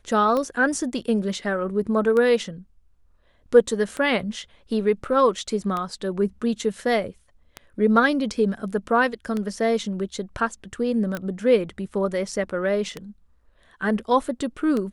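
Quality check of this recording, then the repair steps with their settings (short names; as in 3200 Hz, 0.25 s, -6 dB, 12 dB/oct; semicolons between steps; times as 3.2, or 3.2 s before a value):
tick 33 1/3 rpm -15 dBFS
11.15 pop -18 dBFS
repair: de-click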